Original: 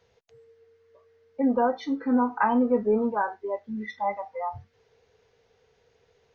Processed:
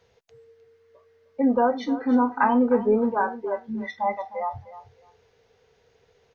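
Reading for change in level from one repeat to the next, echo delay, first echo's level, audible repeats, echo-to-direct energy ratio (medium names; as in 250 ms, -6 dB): -15.0 dB, 307 ms, -15.0 dB, 2, -15.0 dB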